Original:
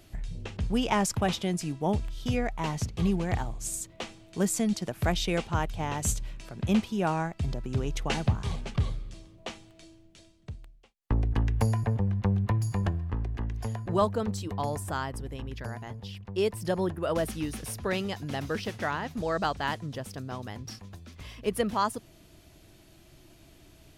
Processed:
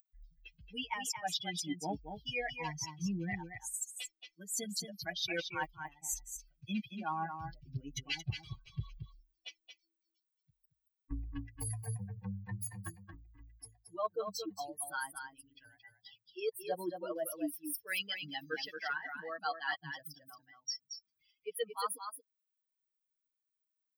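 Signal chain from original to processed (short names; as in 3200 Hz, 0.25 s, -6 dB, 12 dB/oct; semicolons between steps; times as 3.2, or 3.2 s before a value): per-bin expansion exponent 3; RIAA curve recording; comb 6.5 ms, depth 75%; reverse; compressor 8:1, threshold -45 dBFS, peak gain reduction 26 dB; reverse; bell 11000 Hz -5.5 dB 1.6 oct; on a send: echo 0.226 s -7.5 dB; on the sum: gain +11 dB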